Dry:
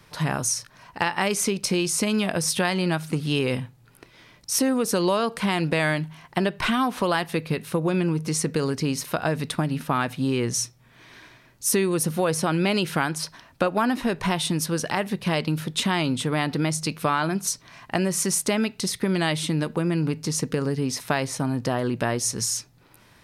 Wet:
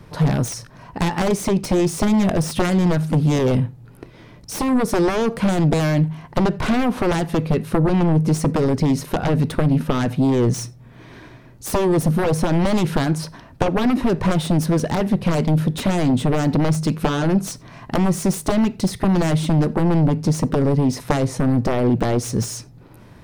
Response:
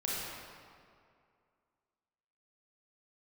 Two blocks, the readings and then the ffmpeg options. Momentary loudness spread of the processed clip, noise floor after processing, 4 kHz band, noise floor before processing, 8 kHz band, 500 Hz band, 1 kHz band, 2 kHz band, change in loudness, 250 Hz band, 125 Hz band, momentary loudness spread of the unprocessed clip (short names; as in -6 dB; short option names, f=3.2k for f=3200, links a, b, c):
6 LU, -45 dBFS, -3.0 dB, -55 dBFS, -5.0 dB, +4.5 dB, +2.0 dB, -2.0 dB, +5.0 dB, +7.0 dB, +9.0 dB, 5 LU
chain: -filter_complex "[0:a]aeval=exprs='0.501*(cos(1*acos(clip(val(0)/0.501,-1,1)))-cos(1*PI/2))+0.224*(cos(7*acos(clip(val(0)/0.501,-1,1)))-cos(7*PI/2))':c=same,tiltshelf=f=970:g=8,asplit=2[a][b];[1:a]atrim=start_sample=2205,atrim=end_sample=4410[c];[b][c]afir=irnorm=-1:irlink=0,volume=-23dB[d];[a][d]amix=inputs=2:normalize=0,volume=-1dB"